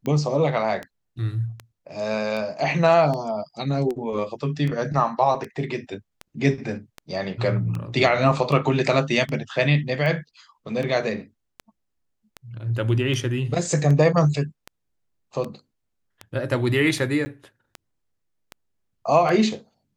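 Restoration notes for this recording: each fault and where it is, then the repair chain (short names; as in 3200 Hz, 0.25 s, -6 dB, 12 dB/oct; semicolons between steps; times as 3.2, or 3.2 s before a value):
tick 78 rpm -18 dBFS
17.25–17.26 gap 10 ms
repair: de-click; interpolate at 17.25, 10 ms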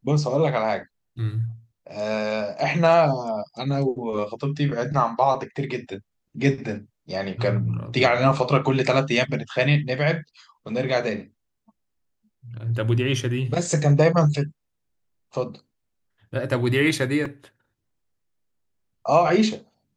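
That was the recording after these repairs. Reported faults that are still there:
none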